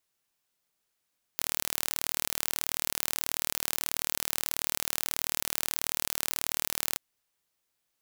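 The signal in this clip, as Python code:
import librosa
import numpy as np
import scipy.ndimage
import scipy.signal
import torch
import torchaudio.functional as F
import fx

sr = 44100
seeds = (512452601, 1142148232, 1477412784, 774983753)

y = 10.0 ** (-2.5 / 20.0) * (np.mod(np.arange(round(5.58 * sr)), round(sr / 38.4)) == 0)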